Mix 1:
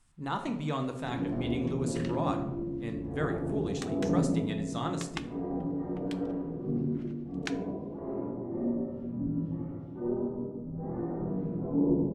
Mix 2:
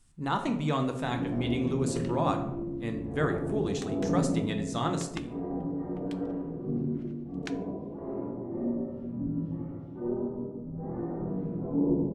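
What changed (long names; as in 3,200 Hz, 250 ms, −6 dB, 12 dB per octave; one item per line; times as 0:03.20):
speech +4.0 dB
second sound −4.0 dB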